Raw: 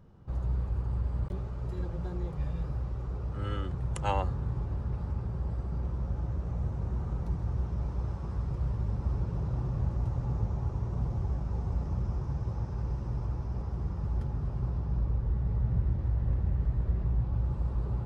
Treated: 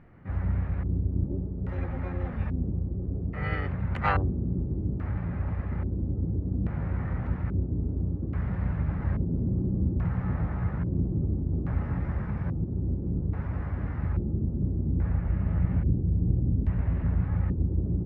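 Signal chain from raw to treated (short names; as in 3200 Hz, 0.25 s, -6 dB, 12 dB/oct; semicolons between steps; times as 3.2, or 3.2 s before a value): harmoniser +7 st -1 dB; LFO low-pass square 0.6 Hz 340–2100 Hz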